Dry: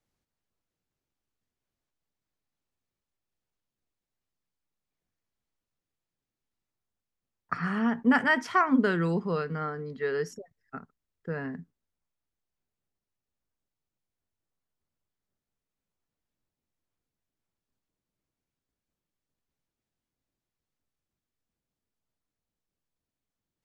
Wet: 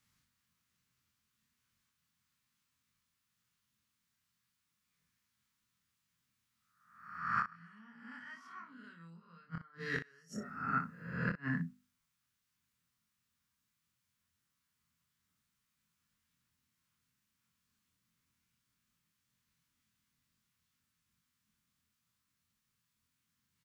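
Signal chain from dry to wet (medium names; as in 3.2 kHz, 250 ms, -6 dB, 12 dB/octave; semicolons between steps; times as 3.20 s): reverse spectral sustain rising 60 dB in 0.78 s; high-pass 120 Hz 6 dB/octave; high-order bell 510 Hz -15.5 dB; hum notches 50/100/150/200/250/300/350 Hz; inverted gate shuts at -27 dBFS, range -35 dB; early reflections 24 ms -3 dB, 60 ms -9.5 dB; trim +5.5 dB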